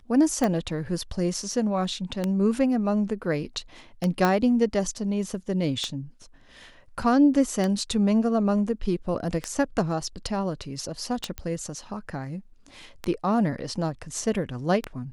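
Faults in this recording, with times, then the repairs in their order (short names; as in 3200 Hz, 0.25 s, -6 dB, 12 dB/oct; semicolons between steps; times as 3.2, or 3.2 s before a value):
tick 33 1/3 rpm -12 dBFS
4.25 pop -9 dBFS
11.38 pop -16 dBFS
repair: de-click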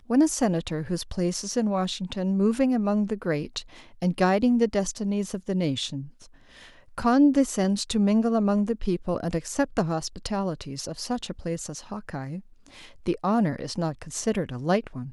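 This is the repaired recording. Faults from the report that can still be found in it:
none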